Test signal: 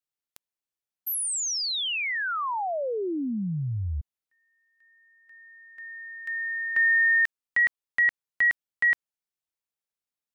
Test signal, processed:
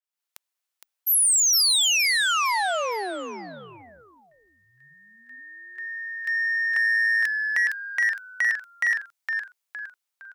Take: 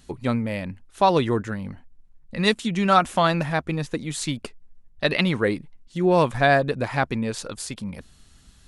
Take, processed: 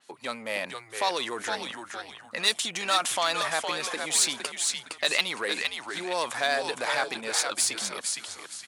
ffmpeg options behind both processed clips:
-filter_complex "[0:a]acrossover=split=4000[a][b];[a]acompressor=threshold=-28dB:ratio=6:attack=10:release=35:knee=1:detection=rms[c];[c][b]amix=inputs=2:normalize=0,asplit=5[d][e][f][g][h];[e]adelay=462,afreqshift=-110,volume=-5.5dB[i];[f]adelay=924,afreqshift=-220,volume=-14.6dB[j];[g]adelay=1386,afreqshift=-330,volume=-23.7dB[k];[h]adelay=1848,afreqshift=-440,volume=-32.9dB[l];[d][i][j][k][l]amix=inputs=5:normalize=0,dynaudnorm=f=110:g=3:m=8dB,asplit=2[m][n];[n]asoftclip=type=tanh:threshold=-22dB,volume=-3.5dB[o];[m][o]amix=inputs=2:normalize=0,highpass=670,adynamicequalizer=threshold=0.0224:dfrequency=3900:dqfactor=0.7:tfrequency=3900:tqfactor=0.7:attack=5:release=100:ratio=0.375:range=2:mode=boostabove:tftype=highshelf,volume=-5.5dB"

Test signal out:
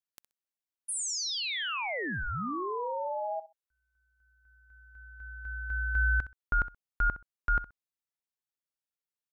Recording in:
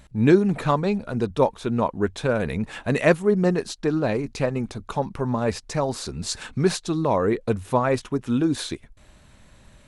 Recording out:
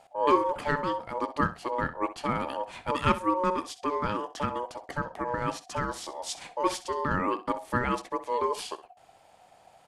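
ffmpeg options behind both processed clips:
-af "aeval=exprs='val(0)*sin(2*PI*730*n/s)':c=same,aecho=1:1:64|128:0.178|0.032,volume=-4dB"

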